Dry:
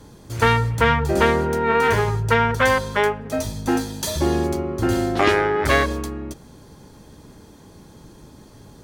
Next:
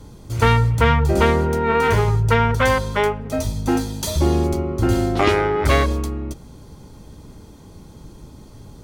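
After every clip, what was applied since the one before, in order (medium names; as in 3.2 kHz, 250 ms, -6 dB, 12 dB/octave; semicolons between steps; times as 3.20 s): bass shelf 110 Hz +10 dB; band-stop 1.7 kHz, Q 8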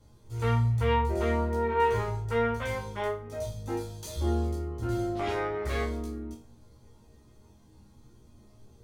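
chorus voices 4, 0.37 Hz, delay 16 ms, depth 1.6 ms; chord resonator D#2 sus4, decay 0.34 s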